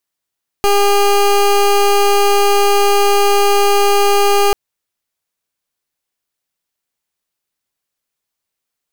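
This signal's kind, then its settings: pulse 404 Hz, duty 22% -11 dBFS 3.89 s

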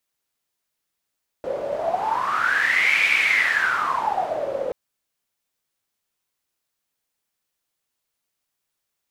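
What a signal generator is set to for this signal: wind-like swept noise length 3.28 s, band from 530 Hz, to 2300 Hz, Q 12, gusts 1, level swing 8 dB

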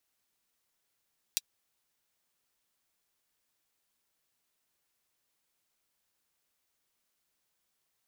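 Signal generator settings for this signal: closed hi-hat, high-pass 3700 Hz, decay 0.04 s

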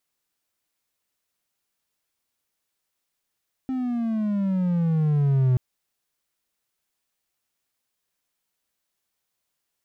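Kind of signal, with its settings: gliding synth tone triangle, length 1.88 s, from 264 Hz, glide -13 st, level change +8 dB, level -14 dB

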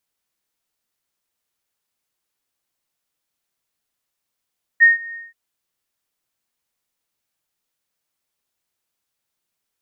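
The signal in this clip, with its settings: ADSR sine 1850 Hz, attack 28 ms, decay 0.147 s, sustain -23.5 dB, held 0.34 s, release 0.191 s -5.5 dBFS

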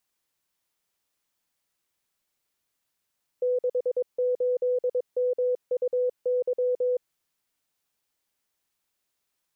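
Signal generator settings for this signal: Morse "68MUY" 22 wpm 498 Hz -21.5 dBFS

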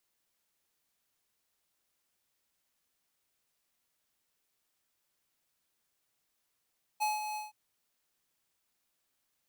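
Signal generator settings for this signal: ADSR square 850 Hz, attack 24 ms, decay 0.174 s, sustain -8 dB, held 0.36 s, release 0.16 s -29.5 dBFS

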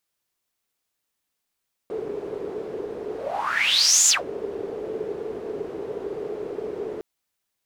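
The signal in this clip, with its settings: whoosh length 5.11 s, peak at 2.18, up 1.04 s, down 0.16 s, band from 420 Hz, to 7000 Hz, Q 9.3, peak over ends 15 dB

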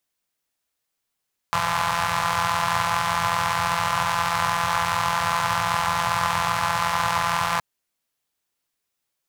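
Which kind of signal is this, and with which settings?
four-cylinder engine model, steady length 6.07 s, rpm 5100, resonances 110/1000 Hz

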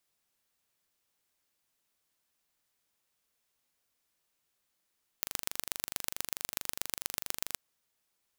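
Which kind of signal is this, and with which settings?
pulse train 24.6/s, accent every 3, -3.5 dBFS 2.33 s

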